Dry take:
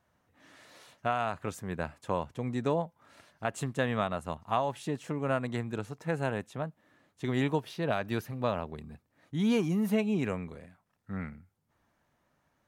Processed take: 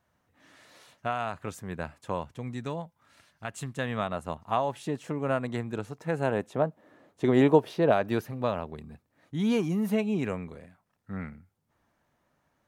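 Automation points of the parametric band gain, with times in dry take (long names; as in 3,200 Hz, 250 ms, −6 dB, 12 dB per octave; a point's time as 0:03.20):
parametric band 480 Hz 2.5 octaves
0:02.19 −1 dB
0:02.65 −7.5 dB
0:03.57 −7.5 dB
0:04.20 +2.5 dB
0:06.11 +2.5 dB
0:06.58 +12 dB
0:07.72 +12 dB
0:08.52 +1.5 dB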